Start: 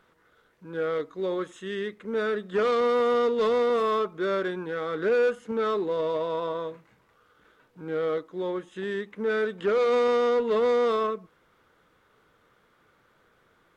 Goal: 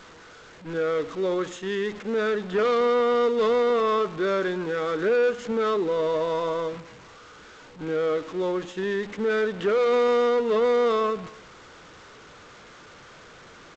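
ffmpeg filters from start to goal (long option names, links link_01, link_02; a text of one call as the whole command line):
ffmpeg -i in.wav -filter_complex "[0:a]aeval=exprs='val(0)+0.5*0.0141*sgn(val(0))':channel_layout=same,agate=range=-8dB:threshold=-39dB:ratio=16:detection=peak,asplit=2[link_01][link_02];[link_02]alimiter=limit=-23.5dB:level=0:latency=1:release=202,volume=-2.5dB[link_03];[link_01][link_03]amix=inputs=2:normalize=0,aecho=1:1:248:0.0708,volume=-2dB" -ar 16000 -c:a g722 out.g722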